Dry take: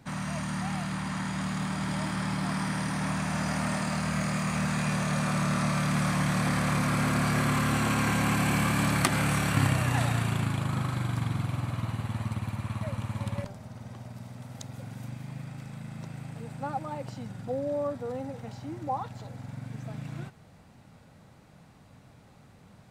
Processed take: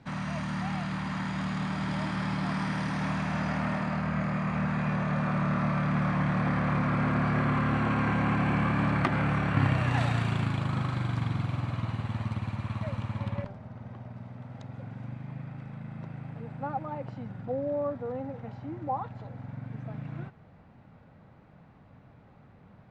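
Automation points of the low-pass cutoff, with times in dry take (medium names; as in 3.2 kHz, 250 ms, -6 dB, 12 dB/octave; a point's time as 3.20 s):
3.03 s 4.2 kHz
4.08 s 2 kHz
9.50 s 2 kHz
10.04 s 4.5 kHz
12.97 s 4.5 kHz
13.61 s 2.1 kHz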